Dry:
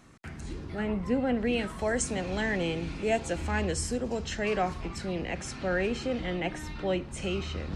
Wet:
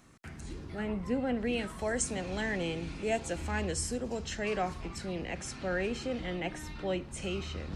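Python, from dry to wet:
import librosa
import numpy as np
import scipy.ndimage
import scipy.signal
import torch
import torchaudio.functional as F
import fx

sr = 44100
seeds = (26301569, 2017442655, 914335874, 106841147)

y = fx.high_shelf(x, sr, hz=7500.0, db=6.5)
y = F.gain(torch.from_numpy(y), -4.0).numpy()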